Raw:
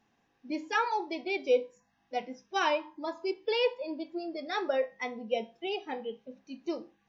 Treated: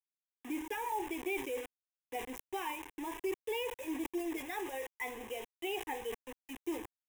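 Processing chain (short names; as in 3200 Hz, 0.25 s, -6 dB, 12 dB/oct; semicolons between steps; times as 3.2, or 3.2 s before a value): 4.38–6.64 low shelf 300 Hz -9.5 dB; compressor 2:1, threshold -40 dBFS, peak gain reduction 11 dB; limiter -32.5 dBFS, peak gain reduction 7.5 dB; requantised 8-bit, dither none; fixed phaser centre 910 Hz, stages 8; sustainer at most 100 dB/s; gain +4.5 dB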